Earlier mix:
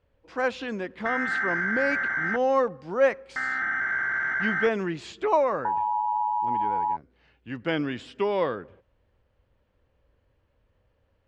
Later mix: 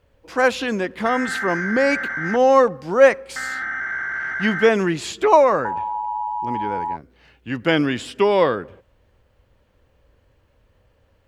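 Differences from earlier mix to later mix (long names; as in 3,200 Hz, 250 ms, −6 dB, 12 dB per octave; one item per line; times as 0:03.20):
speech +8.5 dB
master: remove high-frequency loss of the air 99 metres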